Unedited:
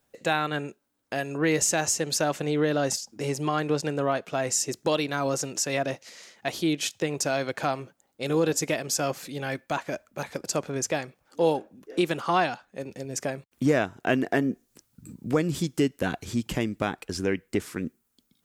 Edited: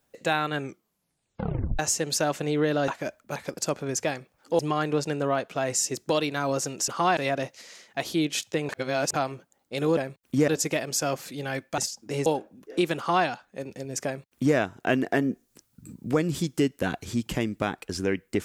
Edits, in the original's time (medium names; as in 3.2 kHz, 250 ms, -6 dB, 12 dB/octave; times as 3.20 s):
0.58 s: tape stop 1.21 s
2.88–3.36 s: swap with 9.75–11.46 s
7.17–7.62 s: reverse
12.17–12.46 s: copy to 5.65 s
13.25–13.76 s: copy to 8.45 s